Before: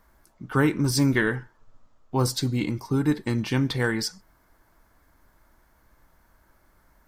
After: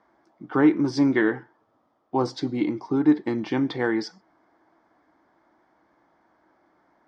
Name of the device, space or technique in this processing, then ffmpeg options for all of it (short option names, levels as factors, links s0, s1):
kitchen radio: -af "highpass=220,equalizer=f=320:t=q:w=4:g=9,equalizer=f=750:t=q:w=4:g=7,equalizer=f=1500:t=q:w=4:g=-3,equalizer=f=2700:t=q:w=4:g=-8,equalizer=f=4100:t=q:w=4:g=-7,lowpass=f=4500:w=0.5412,lowpass=f=4500:w=1.3066"